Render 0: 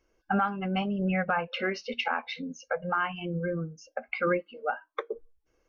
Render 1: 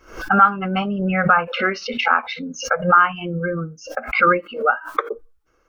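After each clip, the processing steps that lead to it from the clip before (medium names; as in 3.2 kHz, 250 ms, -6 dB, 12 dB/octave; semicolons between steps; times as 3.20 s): peaking EQ 1.3 kHz +12.5 dB 0.49 oct; swell ahead of each attack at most 130 dB/s; trim +6.5 dB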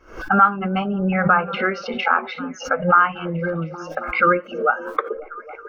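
treble shelf 3.6 kHz -10 dB; repeats whose band climbs or falls 272 ms, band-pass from 270 Hz, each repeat 0.7 oct, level -9.5 dB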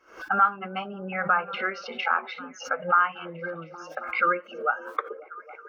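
high-pass 700 Hz 6 dB/octave; trim -5 dB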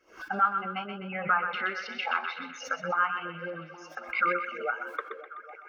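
LFO notch sine 3.5 Hz 440–1500 Hz; band-passed feedback delay 126 ms, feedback 58%, band-pass 2.3 kHz, level -5.5 dB; trim -2 dB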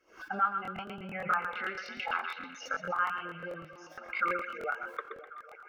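crackling interface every 0.11 s, samples 1024, repeat, from 0.63 s; trim -4 dB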